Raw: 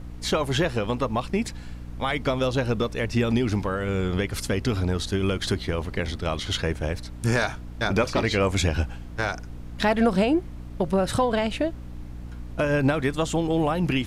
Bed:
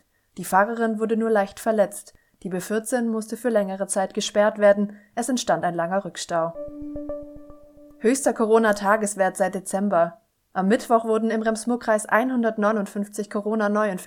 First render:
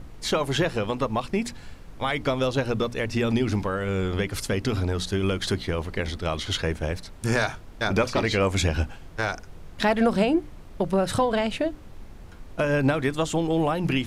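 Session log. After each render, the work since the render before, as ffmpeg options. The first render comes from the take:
-af "bandreject=f=60:t=h:w=6,bandreject=f=120:t=h:w=6,bandreject=f=180:t=h:w=6,bandreject=f=240:t=h:w=6,bandreject=f=300:t=h:w=6"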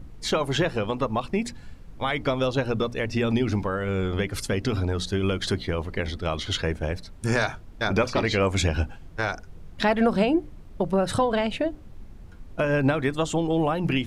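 -af "afftdn=nr=7:nf=-43"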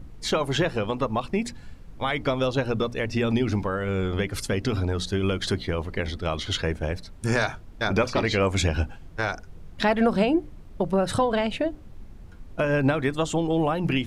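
-af anull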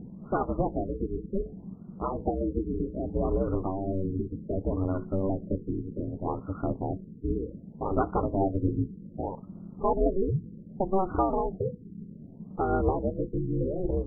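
-af "aeval=exprs='val(0)*sin(2*PI*190*n/s)':c=same,afftfilt=real='re*lt(b*sr/1024,460*pow(1500/460,0.5+0.5*sin(2*PI*0.65*pts/sr)))':imag='im*lt(b*sr/1024,460*pow(1500/460,0.5+0.5*sin(2*PI*0.65*pts/sr)))':win_size=1024:overlap=0.75"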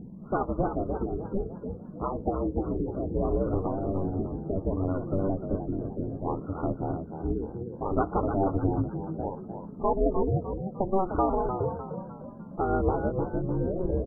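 -filter_complex "[0:a]asplit=6[a][b][c][d][e][f];[b]adelay=302,afreqshift=51,volume=-8dB[g];[c]adelay=604,afreqshift=102,volume=-16dB[h];[d]adelay=906,afreqshift=153,volume=-23.9dB[i];[e]adelay=1208,afreqshift=204,volume=-31.9dB[j];[f]adelay=1510,afreqshift=255,volume=-39.8dB[k];[a][g][h][i][j][k]amix=inputs=6:normalize=0"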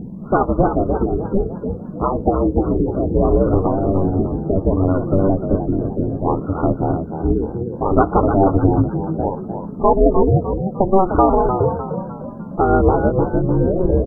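-af "volume=12dB,alimiter=limit=-1dB:level=0:latency=1"

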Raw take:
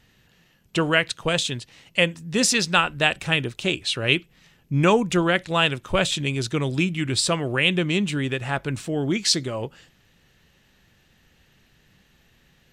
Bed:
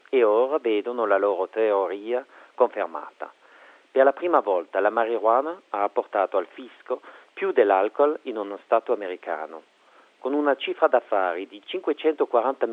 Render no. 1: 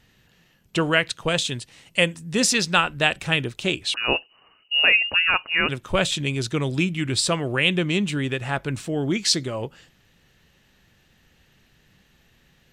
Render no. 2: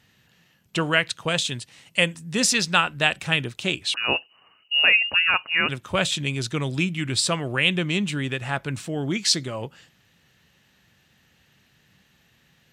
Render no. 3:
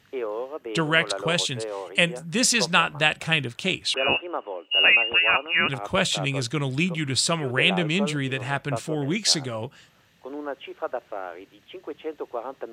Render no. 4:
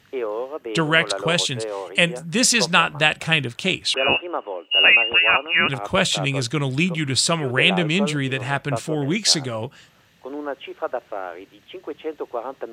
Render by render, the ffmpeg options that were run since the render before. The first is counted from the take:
-filter_complex "[0:a]asettb=1/sr,asplit=3[a][b][c];[a]atrim=end=1.494[d];[b]atrim=start=1.49:end=2.35,asetpts=PTS-STARTPTS,afade=t=in:d=0.004:c=qsin,afade=t=out:st=0.856:d=0.004:c=qsin,equalizer=f=8.9k:t=o:w=0.57:g=7.5[e];[c]atrim=start=2.346[f];[d][e]acrossfade=d=0.004:c1=hsin:c2=qsin[g];[g][f]acrossfade=d=0.004:c1=qsin:c2=hsin,asettb=1/sr,asplit=3[h][i][j];[h]atrim=end=3.944[k];[i]atrim=start=3.94:end=5.69,asetpts=PTS-STARTPTS,afade=t=in:d=0.004:c=qsin,afade=t=out:st=1.746:d=0.004:c=qsin,lowpass=f=2.6k:t=q:w=0.5098,lowpass=f=2.6k:t=q:w=0.6013,lowpass=f=2.6k:t=q:w=0.9,lowpass=f=2.6k:t=q:w=2.563,afreqshift=-3000[l];[j]atrim=start=5.686[m];[k][l]acrossfade=d=0.004:c1=hsin:c2=qsin[n];[n][m]acrossfade=d=0.004:c1=qsin:c2=hsin"
-af "highpass=89,equalizer=f=390:w=1:g=-4"
-filter_complex "[1:a]volume=-11dB[a];[0:a][a]amix=inputs=2:normalize=0"
-af "volume=3.5dB,alimiter=limit=-1dB:level=0:latency=1"

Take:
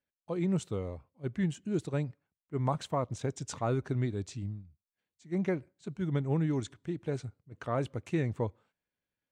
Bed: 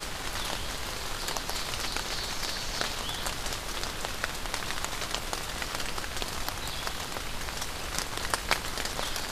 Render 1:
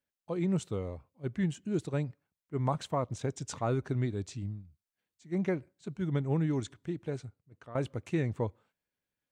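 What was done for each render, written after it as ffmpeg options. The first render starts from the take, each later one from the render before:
-filter_complex "[0:a]asplit=2[a][b];[a]atrim=end=7.75,asetpts=PTS-STARTPTS,afade=t=out:st=6.89:d=0.86:silence=0.177828[c];[b]atrim=start=7.75,asetpts=PTS-STARTPTS,afade=t=in:d=0.004:c=hsin:silence=0.177828[d];[c][d]concat=n=2:v=0:a=1"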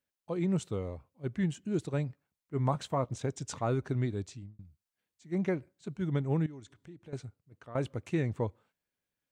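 -filter_complex "[0:a]asettb=1/sr,asplit=3[a][b][c];[a]atrim=end=1.974[d];[b]atrim=start=1.97:end=3.2,asetpts=PTS-STARTPTS,afade=t=in:d=0.004:c=qsin,afade=t=out:st=1.226:d=0.004:c=qsin,asplit=2[e][f];[f]adelay=15,volume=-12.5dB[g];[e][g]amix=inputs=2:normalize=0,atrim=end_sample=54243[h];[c]atrim=start=3.196[i];[d][h]acrossfade=d=0.004:c1=hsin:c2=qsin[j];[j][i]acrossfade=d=0.004:c1=qsin:c2=hsin,asettb=1/sr,asplit=3[k][l][m];[k]atrim=end=6.464[n];[l]atrim=start=6.46:end=7.13,asetpts=PTS-STARTPTS,afade=t=in:d=0.004:c=qsin,afade=t=out:st=0.666:d=0.004:c=qsin,acompressor=threshold=-57dB:ratio=2:attack=3.2:release=140:knee=1:detection=peak[o];[m]atrim=start=7.126[p];[n][o]acrossfade=d=0.004:c1=hsin:c2=qsin[q];[q][p]acrossfade=d=0.004:c1=qsin:c2=hsin,asplit=2[r][s];[r]atrim=end=4.59,asetpts=PTS-STARTPTS,afade=t=out:st=4.18:d=0.41[t];[s]atrim=start=4.59,asetpts=PTS-STARTPTS,afade=t=in:d=0.004:c=hsin[u];[t][u]concat=n=2:v=0:a=1"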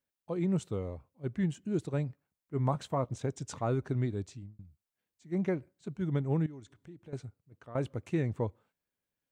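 -af "equalizer=f=4.4k:w=0.31:g=-3.5"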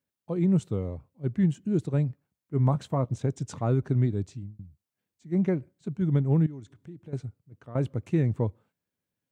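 -af "highpass=100,lowshelf=f=270:g=11.5"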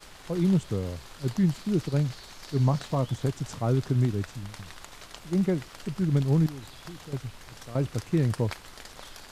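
-filter_complex "[1:a]volume=-12.5dB[a];[0:a][a]amix=inputs=2:normalize=0"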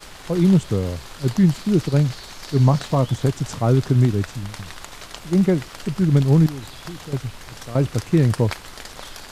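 -af "volume=8dB"

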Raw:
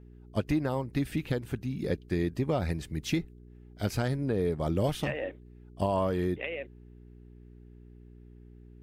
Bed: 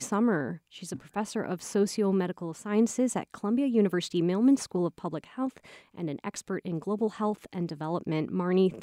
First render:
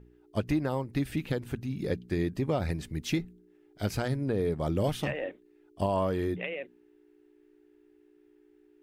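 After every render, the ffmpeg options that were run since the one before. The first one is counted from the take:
-af "bandreject=f=60:t=h:w=4,bandreject=f=120:t=h:w=4,bandreject=f=180:t=h:w=4,bandreject=f=240:t=h:w=4"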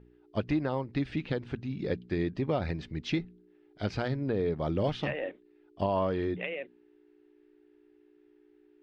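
-af "lowpass=f=4.7k:w=0.5412,lowpass=f=4.7k:w=1.3066,lowshelf=f=120:g=-4.5"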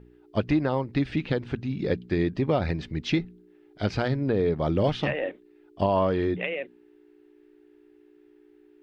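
-af "volume=5.5dB"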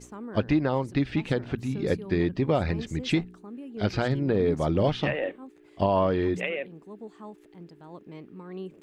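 -filter_complex "[1:a]volume=-14dB[a];[0:a][a]amix=inputs=2:normalize=0"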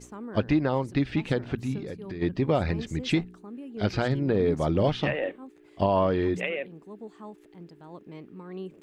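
-filter_complex "[0:a]asplit=3[a][b][c];[a]afade=t=out:st=1.78:d=0.02[d];[b]acompressor=threshold=-33dB:ratio=6:attack=3.2:release=140:knee=1:detection=peak,afade=t=in:st=1.78:d=0.02,afade=t=out:st=2.21:d=0.02[e];[c]afade=t=in:st=2.21:d=0.02[f];[d][e][f]amix=inputs=3:normalize=0"

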